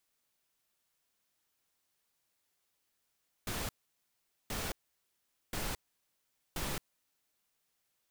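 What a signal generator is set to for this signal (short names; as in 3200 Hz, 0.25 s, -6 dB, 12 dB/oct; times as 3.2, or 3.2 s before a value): noise bursts pink, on 0.22 s, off 0.81 s, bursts 4, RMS -37 dBFS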